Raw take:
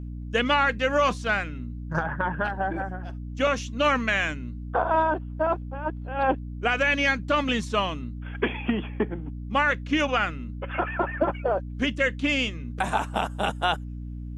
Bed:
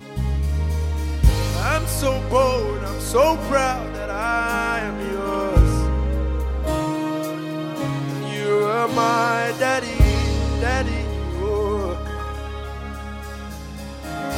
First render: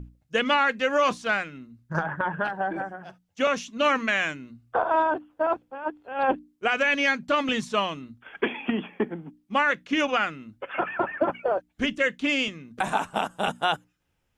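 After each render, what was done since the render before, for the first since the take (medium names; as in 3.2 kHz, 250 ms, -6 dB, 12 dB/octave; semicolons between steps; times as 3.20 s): hum notches 60/120/180/240/300 Hz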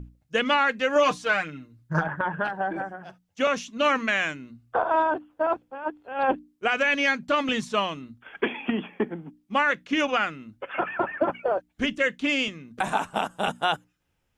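0.95–2.08 s: comb 6.6 ms, depth 67%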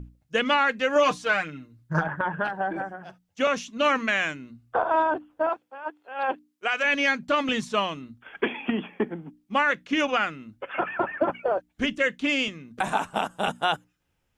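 5.49–6.84 s: high-pass 810 Hz 6 dB/octave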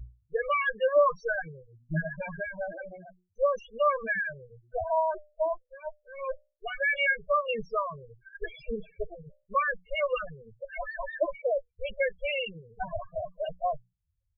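comb filter that takes the minimum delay 1.8 ms; loudest bins only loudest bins 4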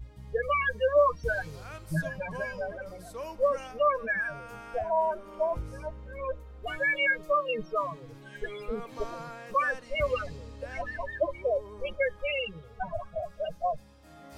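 add bed -23 dB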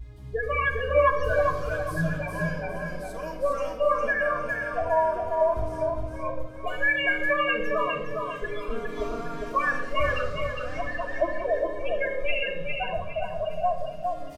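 feedback delay 408 ms, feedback 33%, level -4 dB; simulated room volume 3400 m³, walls furnished, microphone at 3.1 m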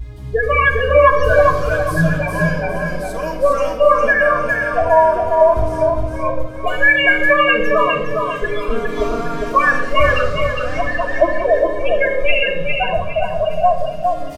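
trim +11.5 dB; peak limiter -1 dBFS, peak gain reduction 3 dB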